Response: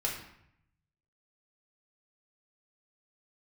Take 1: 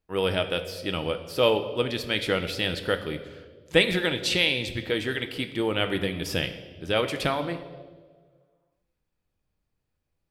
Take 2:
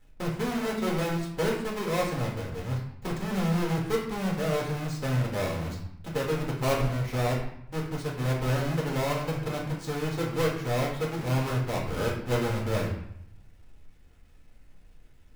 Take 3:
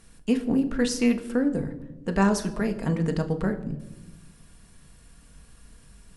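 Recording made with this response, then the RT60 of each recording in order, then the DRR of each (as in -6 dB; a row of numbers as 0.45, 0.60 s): 2; 1.6, 0.70, 1.0 s; 7.5, -3.5, 5.5 dB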